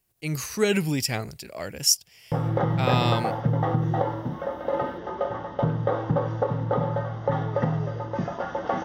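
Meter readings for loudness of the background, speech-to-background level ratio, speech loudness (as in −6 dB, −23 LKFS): −27.0 LKFS, 1.5 dB, −25.5 LKFS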